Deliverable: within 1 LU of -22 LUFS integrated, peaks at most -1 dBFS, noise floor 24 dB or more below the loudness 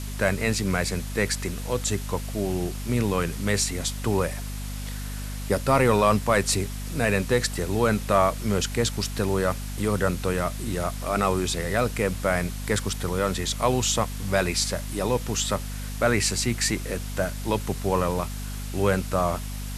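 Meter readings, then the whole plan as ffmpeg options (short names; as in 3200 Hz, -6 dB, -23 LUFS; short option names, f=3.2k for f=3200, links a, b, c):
hum 50 Hz; harmonics up to 250 Hz; hum level -30 dBFS; noise floor -33 dBFS; noise floor target -50 dBFS; loudness -25.5 LUFS; peak -6.5 dBFS; loudness target -22.0 LUFS
-> -af "bandreject=f=50:t=h:w=4,bandreject=f=100:t=h:w=4,bandreject=f=150:t=h:w=4,bandreject=f=200:t=h:w=4,bandreject=f=250:t=h:w=4"
-af "afftdn=nr=17:nf=-33"
-af "volume=3.5dB"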